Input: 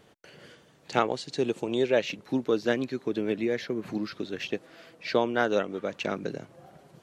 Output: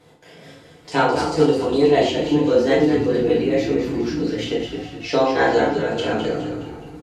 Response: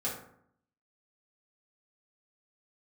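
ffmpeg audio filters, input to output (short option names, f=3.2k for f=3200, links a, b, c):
-filter_complex "[0:a]asetrate=49501,aresample=44100,atempo=0.890899,asplit=7[a][b][c][d][e][f][g];[b]adelay=208,afreqshift=-60,volume=-7dB[h];[c]adelay=416,afreqshift=-120,volume=-13dB[i];[d]adelay=624,afreqshift=-180,volume=-19dB[j];[e]adelay=832,afreqshift=-240,volume=-25.1dB[k];[f]adelay=1040,afreqshift=-300,volume=-31.1dB[l];[g]adelay=1248,afreqshift=-360,volume=-37.1dB[m];[a][h][i][j][k][l][m]amix=inputs=7:normalize=0[n];[1:a]atrim=start_sample=2205,afade=t=out:st=0.13:d=0.01,atrim=end_sample=6174,asetrate=26460,aresample=44100[o];[n][o]afir=irnorm=-1:irlink=0"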